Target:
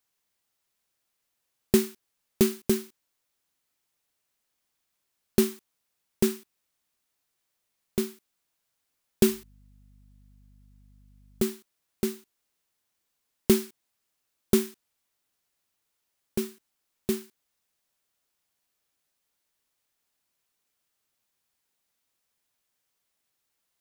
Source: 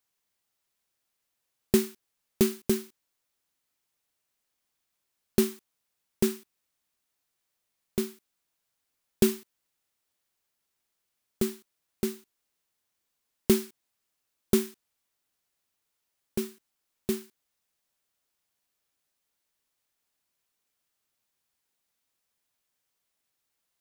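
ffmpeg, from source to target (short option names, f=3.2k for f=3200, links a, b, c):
-filter_complex "[0:a]asettb=1/sr,asplit=3[a][b][c];[a]atrim=end=9.264[d];[b]atrim=start=9.26:end=11.42,asetpts=PTS-STARTPTS,afade=t=in:d=0.004:c=qsin,afade=t=out:st=2.156:d=0.004:c=qsin,aeval=exprs='val(0)+0.00141*(sin(2*PI*50*n/s)+sin(2*PI*2*50*n/s)/2+sin(2*PI*3*50*n/s)/3+sin(2*PI*4*50*n/s)/4+sin(2*PI*5*50*n/s)/5)':c=same[e];[c]atrim=start=11.416[f];[d][e]acrossfade=d=0.004:c1=hsin:c2=qsin[g];[g][f]acrossfade=d=0.004:c1=qsin:c2=hsin,volume=1.5dB"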